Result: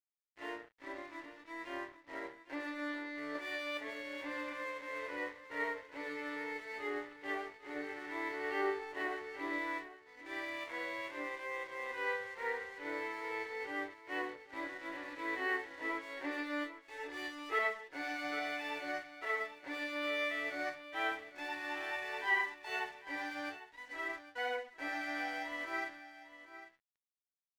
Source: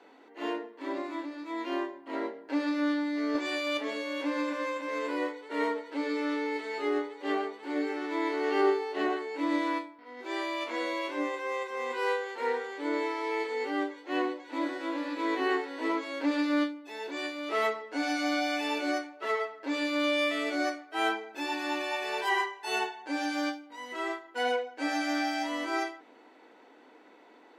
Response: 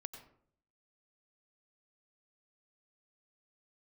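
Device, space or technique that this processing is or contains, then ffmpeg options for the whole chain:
pocket radio on a weak battery: -filter_complex "[0:a]highpass=360,lowpass=4.1k,aeval=exprs='sgn(val(0))*max(abs(val(0))-0.00447,0)':c=same,equalizer=f=1.9k:t=o:w=0.38:g=9.5,asettb=1/sr,asplit=3[a][b][c];[a]atrim=end=16.884[d];[b]atrim=start=16.88:end=17.59,asetpts=PTS-STARTPTS,afade=t=in:d=0.004:c=qsin,afade=t=out:st=0.706:d=0.004:c=qsin,aecho=1:1:2.4:0.98,atrim=end_sample=31311[e];[c]atrim=start=17.586[f];[d][e]acrossfade=d=0.004:c1=hsin:c2=qsin[g];[g][f]acrossfade=d=0.004:c1=qsin:c2=hsin,aecho=1:1:802:0.2,volume=-8dB"

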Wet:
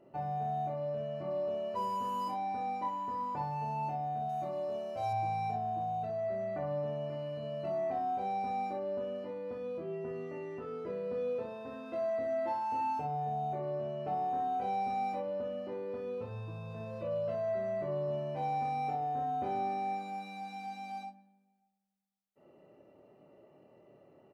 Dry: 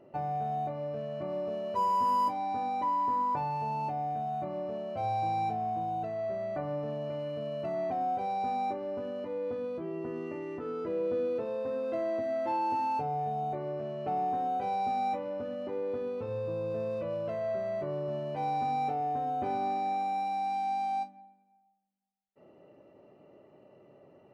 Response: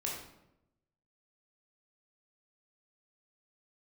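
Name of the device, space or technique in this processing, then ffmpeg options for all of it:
slapback doubling: -filter_complex "[0:a]asplit=3[a][b][c];[b]adelay=26,volume=-4dB[d];[c]adelay=62,volume=-6dB[e];[a][d][e]amix=inputs=3:normalize=0,asettb=1/sr,asplit=3[f][g][h];[f]atrim=end=4.294[i];[g]atrim=start=4.29:end=5.13,asetpts=PTS-STARTPTS,afade=t=in:d=0.004:c=qsin,afade=t=out:st=0.836:d=0.004:c=qsin,bass=f=250:g=-3,treble=f=4k:g=11[j];[h]atrim=start=5.126[k];[i][j]acrossfade=d=0.004:c1=hsin:c2=qsin[l];[l][k]acrossfade=d=0.004:c1=qsin:c2=hsin,volume=-5dB"

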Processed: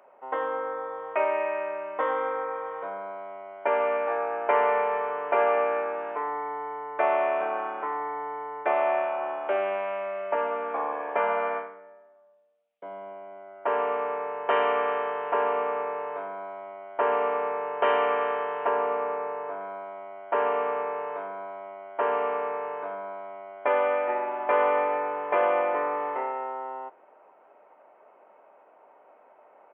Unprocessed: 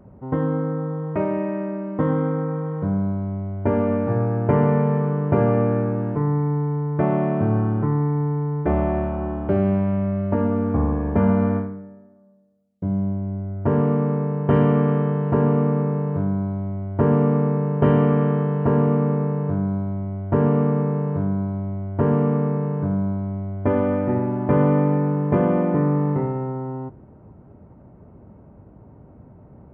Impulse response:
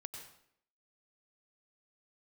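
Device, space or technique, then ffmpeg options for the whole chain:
musical greeting card: -filter_complex "[0:a]asettb=1/sr,asplit=3[a][b][c];[a]atrim=end=18.694[d];[b]atrim=start=18.69:end=19.61,asetpts=PTS-STARTPTS,afade=t=in:d=0.004:c=qsin,afade=t=out:st=0.916:d=0.004:c=qsin,aemphasis=mode=reproduction:type=75kf[e];[c]atrim=start=19.606[f];[d][e]acrossfade=d=0.004:c1=hsin:c2=qsin[g];[g][f]acrossfade=d=0.004:c1=qsin:c2=hsin,aresample=8000,aresample=44100,highpass=f=600:w=0.5412,highpass=f=600:w=1.3066,equalizer=f=2.5k:t=o:w=0.54:g=7.5,volume=3.5dB"

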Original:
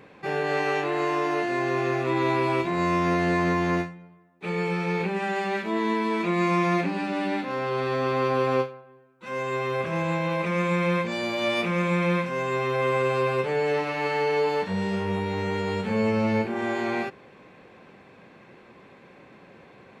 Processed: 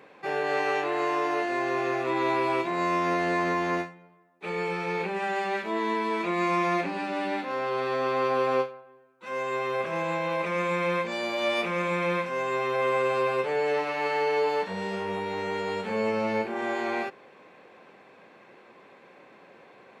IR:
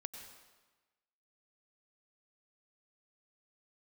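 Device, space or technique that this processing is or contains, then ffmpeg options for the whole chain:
filter by subtraction: -filter_complex "[0:a]asplit=2[a][b];[b]lowpass=600,volume=-1[c];[a][c]amix=inputs=2:normalize=0,volume=-2dB"

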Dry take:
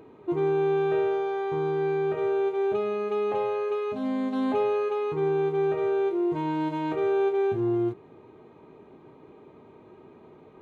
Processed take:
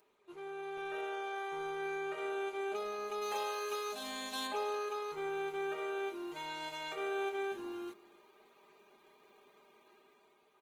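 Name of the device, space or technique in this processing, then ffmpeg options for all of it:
video call: -filter_complex "[0:a]aderivative,aecho=1:1:5:0.62,asplit=3[a][b][c];[a]afade=t=out:st=3.21:d=0.02[d];[b]highshelf=f=3k:g=11,afade=t=in:st=3.21:d=0.02,afade=t=out:st=4.46:d=0.02[e];[c]afade=t=in:st=4.46:d=0.02[f];[d][e][f]amix=inputs=3:normalize=0,highpass=f=160:p=1,aecho=1:1:289:0.0794,dynaudnorm=f=210:g=9:m=8dB" -ar 48000 -c:a libopus -b:a 16k

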